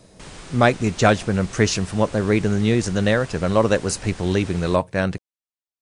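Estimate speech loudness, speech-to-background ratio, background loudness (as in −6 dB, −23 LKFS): −20.5 LKFS, 19.0 dB, −39.5 LKFS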